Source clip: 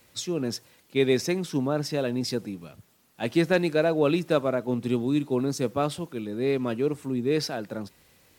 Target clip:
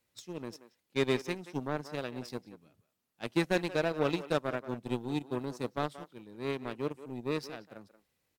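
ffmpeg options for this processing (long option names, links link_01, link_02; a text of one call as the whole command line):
ffmpeg -i in.wav -filter_complex "[0:a]aeval=exprs='0.355*(cos(1*acos(clip(val(0)/0.355,-1,1)))-cos(1*PI/2))+0.0398*(cos(7*acos(clip(val(0)/0.355,-1,1)))-cos(7*PI/2))':channel_layout=same,asplit=2[link_01][link_02];[link_02]adelay=180,highpass=300,lowpass=3400,asoftclip=type=hard:threshold=-18dB,volume=-13dB[link_03];[link_01][link_03]amix=inputs=2:normalize=0,volume=-6.5dB" out.wav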